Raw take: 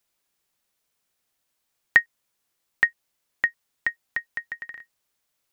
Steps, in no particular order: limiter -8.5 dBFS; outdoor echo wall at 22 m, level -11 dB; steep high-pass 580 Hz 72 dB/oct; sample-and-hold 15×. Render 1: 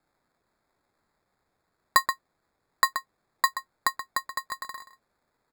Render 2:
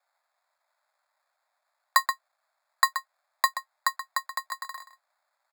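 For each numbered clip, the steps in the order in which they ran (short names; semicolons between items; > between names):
steep high-pass > sample-and-hold > outdoor echo > limiter; sample-and-hold > outdoor echo > limiter > steep high-pass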